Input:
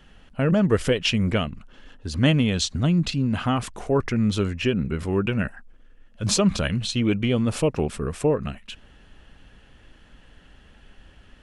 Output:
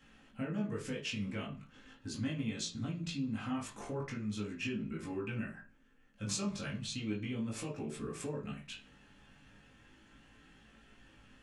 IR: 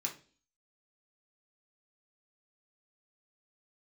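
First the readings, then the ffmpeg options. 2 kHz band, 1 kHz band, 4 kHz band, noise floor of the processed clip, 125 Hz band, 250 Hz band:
-14.0 dB, -16.0 dB, -15.5 dB, -64 dBFS, -17.5 dB, -15.0 dB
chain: -filter_complex "[0:a]acompressor=threshold=-30dB:ratio=4,flanger=delay=18:depth=2.1:speed=0.38[a];[1:a]atrim=start_sample=2205[b];[a][b]afir=irnorm=-1:irlink=0,volume=-4dB"

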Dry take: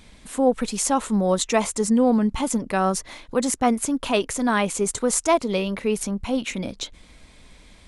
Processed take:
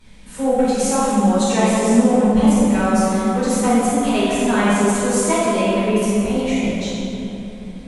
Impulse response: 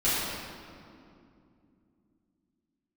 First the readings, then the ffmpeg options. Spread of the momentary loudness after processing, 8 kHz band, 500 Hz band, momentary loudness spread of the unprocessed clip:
10 LU, +2.0 dB, +5.0 dB, 8 LU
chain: -filter_complex "[1:a]atrim=start_sample=2205,asetrate=28665,aresample=44100[a];[0:a][a]afir=irnorm=-1:irlink=0,volume=-12dB"

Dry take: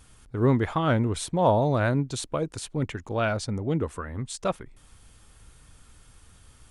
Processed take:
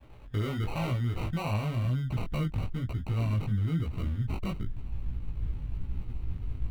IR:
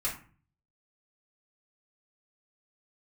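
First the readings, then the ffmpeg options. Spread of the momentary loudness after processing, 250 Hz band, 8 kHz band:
9 LU, -7.0 dB, under -15 dB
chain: -af "agate=range=-33dB:threshold=-49dB:ratio=3:detection=peak,acrusher=samples=26:mix=1:aa=0.000001,asubboost=boost=9.5:cutoff=180,acompressor=threshold=-25dB:ratio=6,highshelf=f=4.2k:t=q:w=1.5:g=-7.5,alimiter=level_in=4dB:limit=-24dB:level=0:latency=1:release=36,volume=-4dB,flanger=delay=16:depth=3.6:speed=1,volume=7.5dB"

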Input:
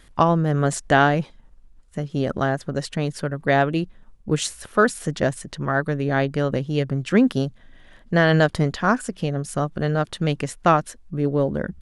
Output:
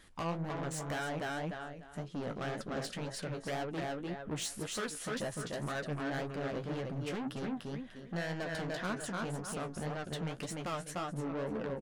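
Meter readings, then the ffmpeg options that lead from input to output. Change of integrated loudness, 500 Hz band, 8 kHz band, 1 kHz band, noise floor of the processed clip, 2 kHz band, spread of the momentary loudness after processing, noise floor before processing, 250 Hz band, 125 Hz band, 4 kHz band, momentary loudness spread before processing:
-16.5 dB, -16.0 dB, -9.5 dB, -17.0 dB, -51 dBFS, -16.0 dB, 3 LU, -52 dBFS, -16.0 dB, -17.0 dB, -11.0 dB, 9 LU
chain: -filter_complex "[0:a]asplit=2[a][b];[b]aecho=0:1:297|594|891:0.473|0.0994|0.0209[c];[a][c]amix=inputs=2:normalize=0,acompressor=threshold=-20dB:ratio=3,asoftclip=type=tanh:threshold=-27.5dB,lowshelf=f=110:g=-7,flanger=delay=9:depth=9.1:regen=31:speed=1.9:shape=sinusoidal,volume=-2dB"

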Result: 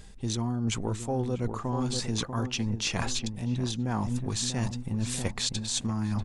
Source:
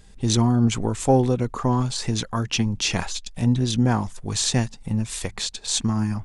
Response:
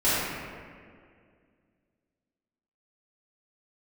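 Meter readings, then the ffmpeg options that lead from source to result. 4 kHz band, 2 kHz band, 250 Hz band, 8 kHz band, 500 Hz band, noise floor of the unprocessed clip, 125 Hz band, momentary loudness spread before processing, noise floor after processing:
-5.5 dB, -6.0 dB, -8.0 dB, -6.0 dB, -9.0 dB, -46 dBFS, -7.5 dB, 8 LU, -42 dBFS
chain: -filter_complex "[0:a]asplit=2[a][b];[b]adelay=642,lowpass=f=1.2k:p=1,volume=-10dB,asplit=2[c][d];[d]adelay=642,lowpass=f=1.2k:p=1,volume=0.4,asplit=2[e][f];[f]adelay=642,lowpass=f=1.2k:p=1,volume=0.4,asplit=2[g][h];[h]adelay=642,lowpass=f=1.2k:p=1,volume=0.4[i];[a][c][e][g][i]amix=inputs=5:normalize=0,areverse,acompressor=threshold=-29dB:ratio=10,areverse,volume=3dB"

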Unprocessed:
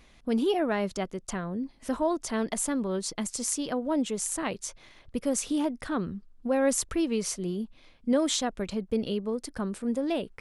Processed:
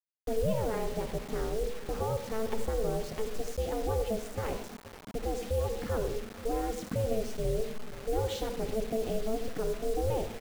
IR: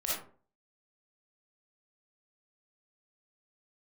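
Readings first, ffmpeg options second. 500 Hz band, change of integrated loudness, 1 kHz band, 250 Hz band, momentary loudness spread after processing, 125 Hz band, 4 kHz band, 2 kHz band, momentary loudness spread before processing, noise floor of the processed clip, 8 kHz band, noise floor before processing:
-1.0 dB, -4.0 dB, -2.5 dB, -10.0 dB, 5 LU, +5.0 dB, -7.5 dB, -6.5 dB, 9 LU, -48 dBFS, -13.5 dB, -58 dBFS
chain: -filter_complex "[0:a]lowpass=10k,lowshelf=f=360:g=8,aeval=exprs='val(0)*sin(2*PI*220*n/s)':c=same,highshelf=f=2.9k:g=-9,alimiter=limit=-21.5dB:level=0:latency=1:release=50,adynamicsmooth=sensitivity=7:basefreq=4.8k,agate=range=-33dB:threshold=-43dB:ratio=3:detection=peak,asplit=2[a][b];[b]adelay=482,lowpass=f=2.1k:p=1,volume=-16.5dB,asplit=2[c][d];[d]adelay=482,lowpass=f=2.1k:p=1,volume=0.46,asplit=2[e][f];[f]adelay=482,lowpass=f=2.1k:p=1,volume=0.46,asplit=2[g][h];[h]adelay=482,lowpass=f=2.1k:p=1,volume=0.46[i];[a][c][e][g][i]amix=inputs=5:normalize=0,asplit=2[j][k];[1:a]atrim=start_sample=2205,asetrate=33957,aresample=44100,lowpass=5.2k[l];[k][l]afir=irnorm=-1:irlink=0,volume=-13dB[m];[j][m]amix=inputs=2:normalize=0,acrusher=bits=6:mix=0:aa=0.000001,bandreject=f=960:w=23,volume=-2.5dB"

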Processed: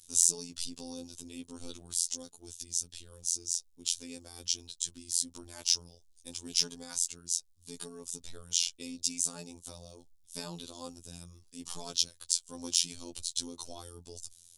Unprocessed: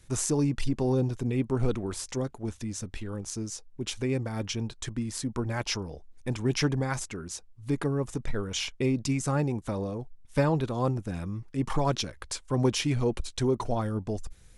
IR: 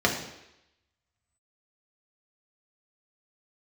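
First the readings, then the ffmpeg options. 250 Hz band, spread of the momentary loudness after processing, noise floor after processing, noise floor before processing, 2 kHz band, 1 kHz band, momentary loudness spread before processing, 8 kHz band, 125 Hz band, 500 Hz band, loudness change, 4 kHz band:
-17.0 dB, 17 LU, -63 dBFS, -54 dBFS, -14.0 dB, -17.5 dB, 10 LU, +7.0 dB, -24.5 dB, -19.0 dB, -2.0 dB, +3.0 dB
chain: -af "aexciter=amount=11.5:drive=6.3:freq=3.1k,afftfilt=real='hypot(re,im)*cos(PI*b)':imag='0':win_size=2048:overlap=0.75,volume=-14dB"

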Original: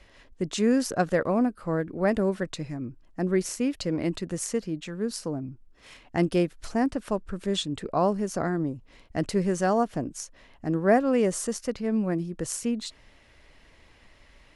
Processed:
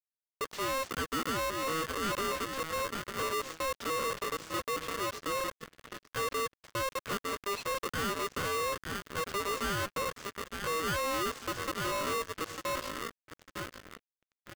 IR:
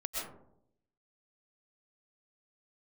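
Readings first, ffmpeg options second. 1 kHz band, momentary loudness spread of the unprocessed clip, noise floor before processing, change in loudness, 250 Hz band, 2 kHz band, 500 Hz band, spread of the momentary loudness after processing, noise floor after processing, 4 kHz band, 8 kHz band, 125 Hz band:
-1.0 dB, 11 LU, -57 dBFS, -6.5 dB, -15.5 dB, +1.5 dB, -8.5 dB, 9 LU, under -85 dBFS, +1.0 dB, -3.5 dB, -12.0 dB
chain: -filter_complex "[0:a]lowshelf=f=190:t=q:w=3:g=-11.5,acrossover=split=130[a][b];[a]alimiter=level_in=20.5dB:limit=-24dB:level=0:latency=1,volume=-20.5dB[c];[c][b]amix=inputs=2:normalize=0,aecho=1:1:899|1798|2697|3596|4495|5394:0.224|0.128|0.0727|0.0415|0.0236|0.0135,aresample=16000,acrusher=bits=4:mix=0:aa=0.5,aresample=44100,asoftclip=type=hard:threshold=-23.5dB,asplit=2[d][e];[e]highpass=f=720:p=1,volume=19dB,asoftclip=type=tanh:threshold=-23.5dB[f];[d][f]amix=inputs=2:normalize=0,lowpass=f=1.2k:p=1,volume=-6dB,aeval=exprs='val(0)*sgn(sin(2*PI*800*n/s))':c=same,volume=-5dB"

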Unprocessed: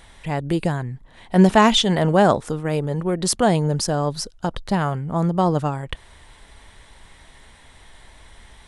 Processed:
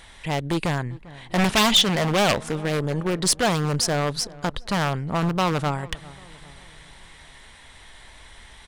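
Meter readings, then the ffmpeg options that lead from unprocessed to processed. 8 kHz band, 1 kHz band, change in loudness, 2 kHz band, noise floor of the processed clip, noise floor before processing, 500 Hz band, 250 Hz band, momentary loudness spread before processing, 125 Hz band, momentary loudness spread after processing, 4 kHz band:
+2.0 dB, -3.5 dB, -2.5 dB, +1.5 dB, -48 dBFS, -49 dBFS, -4.5 dB, -5.0 dB, 13 LU, -3.5 dB, 12 LU, +3.0 dB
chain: -filter_complex "[0:a]aeval=exprs='0.794*(cos(1*acos(clip(val(0)/0.794,-1,1)))-cos(1*PI/2))+0.251*(cos(2*acos(clip(val(0)/0.794,-1,1)))-cos(2*PI/2))+0.0794*(cos(6*acos(clip(val(0)/0.794,-1,1)))-cos(6*PI/2))+0.112*(cos(8*acos(clip(val(0)/0.794,-1,1)))-cos(8*PI/2))':c=same,highshelf=f=4.5k:g=-7.5,aeval=exprs='0.211*(abs(mod(val(0)/0.211+3,4)-2)-1)':c=same,tiltshelf=f=1.5k:g=-5,asoftclip=type=tanh:threshold=-10dB,asplit=2[a][b];[b]adelay=397,lowpass=f=1.6k:p=1,volume=-20dB,asplit=2[c][d];[d]adelay=397,lowpass=f=1.6k:p=1,volume=0.52,asplit=2[e][f];[f]adelay=397,lowpass=f=1.6k:p=1,volume=0.52,asplit=2[g][h];[h]adelay=397,lowpass=f=1.6k:p=1,volume=0.52[i];[a][c][e][g][i]amix=inputs=5:normalize=0,volume=3dB"

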